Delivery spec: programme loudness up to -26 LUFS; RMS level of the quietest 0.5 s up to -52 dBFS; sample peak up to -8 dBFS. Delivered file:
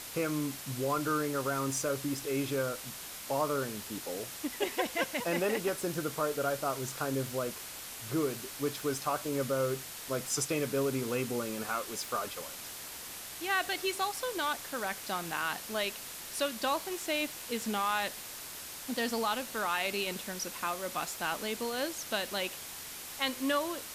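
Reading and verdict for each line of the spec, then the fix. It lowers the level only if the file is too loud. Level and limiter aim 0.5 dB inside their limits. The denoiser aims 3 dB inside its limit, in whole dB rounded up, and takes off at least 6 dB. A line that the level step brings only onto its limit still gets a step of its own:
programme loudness -34.0 LUFS: OK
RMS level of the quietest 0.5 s -44 dBFS: fail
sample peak -16.5 dBFS: OK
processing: denoiser 11 dB, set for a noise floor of -44 dBFS

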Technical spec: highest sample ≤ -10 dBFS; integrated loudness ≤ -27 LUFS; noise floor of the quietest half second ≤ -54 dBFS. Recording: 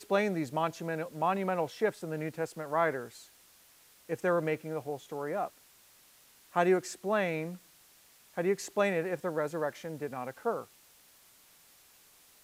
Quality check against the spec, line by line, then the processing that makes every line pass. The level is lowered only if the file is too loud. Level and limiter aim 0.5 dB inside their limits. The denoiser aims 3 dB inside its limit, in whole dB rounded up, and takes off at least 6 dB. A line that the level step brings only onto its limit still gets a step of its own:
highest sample -12.5 dBFS: OK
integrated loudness -33.0 LUFS: OK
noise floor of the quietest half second -61 dBFS: OK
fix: none

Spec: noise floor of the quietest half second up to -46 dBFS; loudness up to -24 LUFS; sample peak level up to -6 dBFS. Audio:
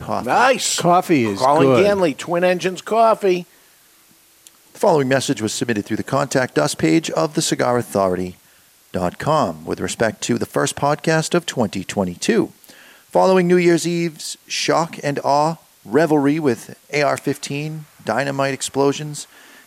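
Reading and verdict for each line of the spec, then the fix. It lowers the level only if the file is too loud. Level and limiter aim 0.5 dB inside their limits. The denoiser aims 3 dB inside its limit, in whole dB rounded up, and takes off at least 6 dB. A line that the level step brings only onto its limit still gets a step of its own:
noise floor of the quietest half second -52 dBFS: OK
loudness -18.5 LUFS: fail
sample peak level -4.0 dBFS: fail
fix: gain -6 dB

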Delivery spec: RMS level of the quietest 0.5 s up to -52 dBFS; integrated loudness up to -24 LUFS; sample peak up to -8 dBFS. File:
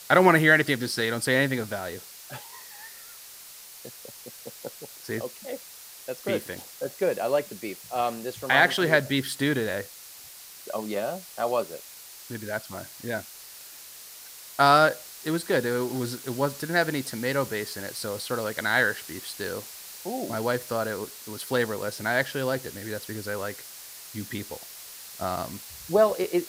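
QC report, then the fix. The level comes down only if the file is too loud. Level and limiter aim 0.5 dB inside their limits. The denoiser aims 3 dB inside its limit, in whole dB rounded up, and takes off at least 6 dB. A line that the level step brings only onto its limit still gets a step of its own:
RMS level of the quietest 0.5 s -46 dBFS: fail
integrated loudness -26.5 LUFS: OK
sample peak -5.5 dBFS: fail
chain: denoiser 9 dB, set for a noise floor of -46 dBFS; limiter -8.5 dBFS

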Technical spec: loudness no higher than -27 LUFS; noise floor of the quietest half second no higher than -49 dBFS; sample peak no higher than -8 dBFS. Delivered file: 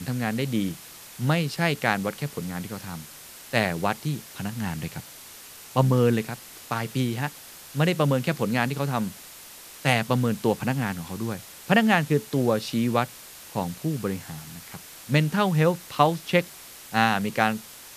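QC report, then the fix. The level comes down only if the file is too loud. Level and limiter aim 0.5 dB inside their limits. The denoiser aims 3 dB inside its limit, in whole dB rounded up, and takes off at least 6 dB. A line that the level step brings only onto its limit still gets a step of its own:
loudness -25.5 LUFS: fail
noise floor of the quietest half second -45 dBFS: fail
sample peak -3.0 dBFS: fail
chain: denoiser 6 dB, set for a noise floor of -45 dBFS; gain -2 dB; limiter -8.5 dBFS

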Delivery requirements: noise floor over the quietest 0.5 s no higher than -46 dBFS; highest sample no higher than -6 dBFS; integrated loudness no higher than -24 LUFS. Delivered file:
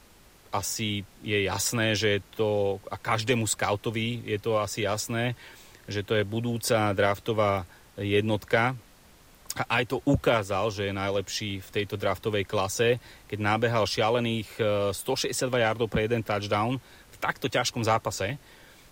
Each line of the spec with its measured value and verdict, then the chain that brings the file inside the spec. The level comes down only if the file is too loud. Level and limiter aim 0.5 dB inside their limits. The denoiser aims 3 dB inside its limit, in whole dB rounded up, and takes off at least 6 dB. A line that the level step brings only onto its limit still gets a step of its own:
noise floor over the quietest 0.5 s -55 dBFS: OK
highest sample -12.0 dBFS: OK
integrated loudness -27.5 LUFS: OK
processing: none

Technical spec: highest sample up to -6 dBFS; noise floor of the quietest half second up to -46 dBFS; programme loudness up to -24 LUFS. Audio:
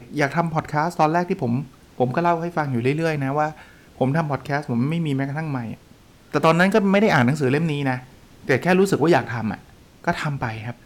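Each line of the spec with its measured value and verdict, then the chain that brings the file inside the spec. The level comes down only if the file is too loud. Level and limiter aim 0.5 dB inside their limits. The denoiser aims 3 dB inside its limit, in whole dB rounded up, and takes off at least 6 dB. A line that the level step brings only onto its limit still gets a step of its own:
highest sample -7.0 dBFS: OK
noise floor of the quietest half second -50 dBFS: OK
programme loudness -21.5 LUFS: fail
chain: gain -3 dB

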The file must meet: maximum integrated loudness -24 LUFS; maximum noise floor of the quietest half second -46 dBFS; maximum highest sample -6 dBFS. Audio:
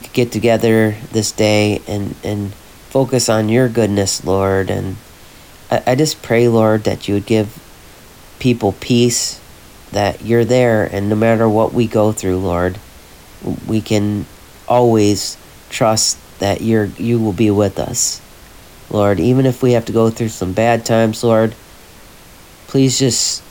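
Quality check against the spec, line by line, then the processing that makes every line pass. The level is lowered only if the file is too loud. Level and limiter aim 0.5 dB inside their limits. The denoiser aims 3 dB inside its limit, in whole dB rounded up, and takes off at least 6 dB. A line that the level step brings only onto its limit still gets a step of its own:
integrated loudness -15.0 LUFS: fail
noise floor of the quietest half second -40 dBFS: fail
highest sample -2.5 dBFS: fail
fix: gain -9.5 dB

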